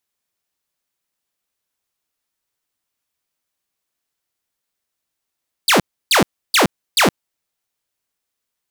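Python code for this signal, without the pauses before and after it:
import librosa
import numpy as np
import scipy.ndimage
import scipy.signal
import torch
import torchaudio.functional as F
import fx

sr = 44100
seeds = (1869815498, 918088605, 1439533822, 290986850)

y = fx.laser_zaps(sr, level_db=-7.5, start_hz=5100.0, end_hz=140.0, length_s=0.12, wave='saw', shots=4, gap_s=0.31)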